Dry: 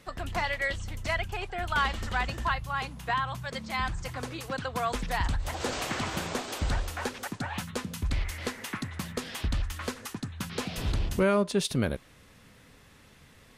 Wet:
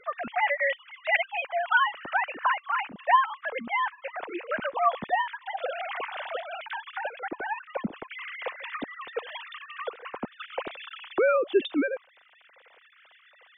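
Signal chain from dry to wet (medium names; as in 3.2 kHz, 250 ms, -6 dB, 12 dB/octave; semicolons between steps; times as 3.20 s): formants replaced by sine waves; in parallel at +0.5 dB: compression, threshold -41 dBFS, peak gain reduction 23 dB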